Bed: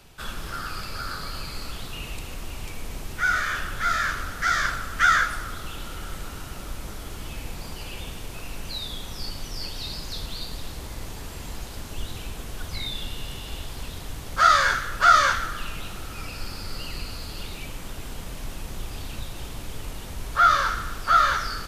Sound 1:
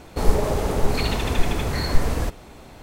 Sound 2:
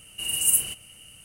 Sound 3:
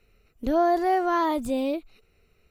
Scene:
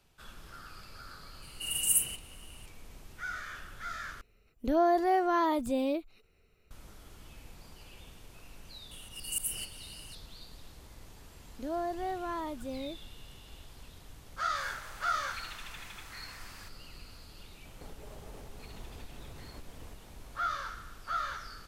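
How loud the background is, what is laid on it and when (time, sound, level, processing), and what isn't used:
bed −16 dB
0:01.42: mix in 2 −6 dB
0:04.21: overwrite with 3 −4 dB
0:08.91: mix in 2 −1.5 dB + volume swells 338 ms
0:11.16: mix in 3 −13 dB
0:14.39: mix in 1 −10.5 dB + four-pole ladder high-pass 1,000 Hz, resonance 20%
0:17.65: mix in 1 −14 dB + downward compressor, threshold −32 dBFS

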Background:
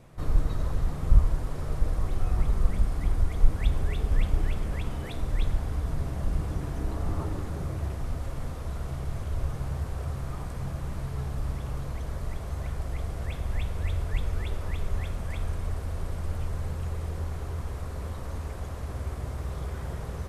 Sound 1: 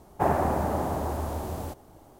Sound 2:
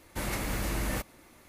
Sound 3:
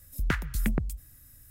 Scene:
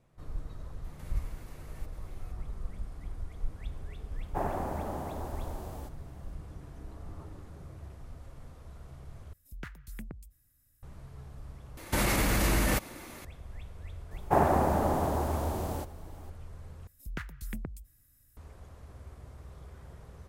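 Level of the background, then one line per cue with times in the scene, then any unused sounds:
background −14.5 dB
0:00.84: mix in 2 −5.5 dB + downward compressor 4 to 1, threshold −48 dBFS
0:04.15: mix in 1 −9 dB
0:09.33: overwrite with 3 −15.5 dB
0:11.77: overwrite with 2 −16.5 dB + boost into a limiter +27 dB
0:14.11: mix in 1
0:16.87: overwrite with 3 −11 dB

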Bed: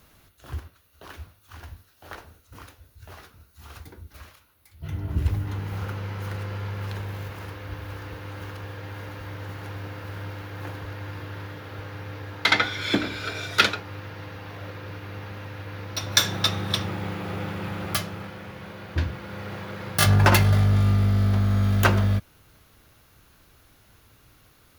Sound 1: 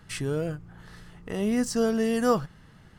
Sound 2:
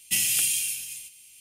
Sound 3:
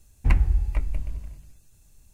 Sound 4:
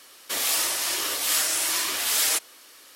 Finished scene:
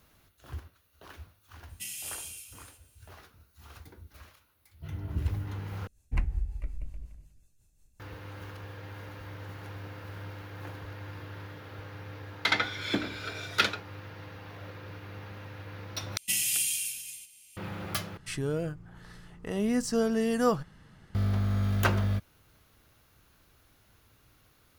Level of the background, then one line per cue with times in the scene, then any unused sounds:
bed −6.5 dB
0:01.69: mix in 2 −15.5 dB
0:05.87: overwrite with 3 −9 dB + rotating-speaker cabinet horn 5.5 Hz
0:16.17: overwrite with 2 −4.5 dB
0:18.17: overwrite with 1 −2.5 dB
not used: 4

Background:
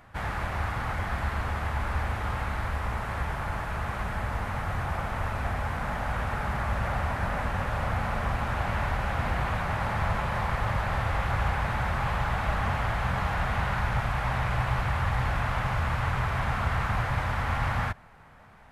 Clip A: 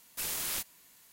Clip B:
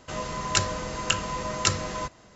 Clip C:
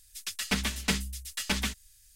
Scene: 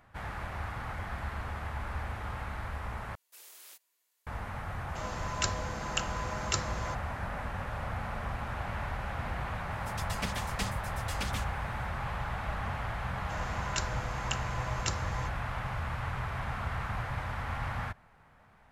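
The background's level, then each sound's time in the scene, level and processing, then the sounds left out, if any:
background −7.5 dB
0:03.15: overwrite with A −17.5 dB + high-pass filter 370 Hz 24 dB per octave
0:04.87: mix in B −8 dB
0:09.71: mix in C −8.5 dB
0:13.21: mix in B −11 dB

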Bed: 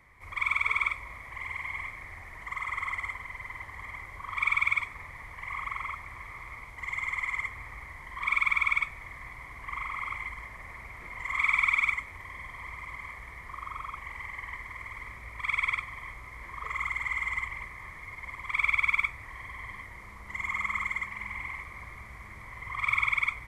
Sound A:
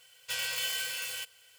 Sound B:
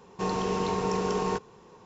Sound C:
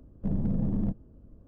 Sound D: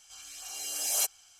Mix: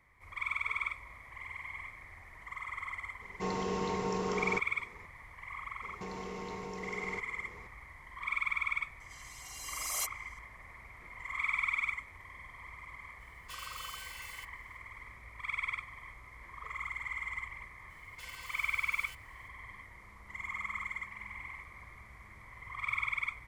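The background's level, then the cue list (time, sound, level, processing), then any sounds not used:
bed −7.5 dB
0:03.21: mix in B −6 dB
0:05.82: mix in B −3 dB + downward compressor, threshold −36 dBFS
0:09.00: mix in D −7.5 dB + Butterworth high-pass 240 Hz 72 dB per octave
0:13.20: mix in A −13 dB
0:17.90: mix in A −11.5 dB + brickwall limiter −29.5 dBFS
not used: C

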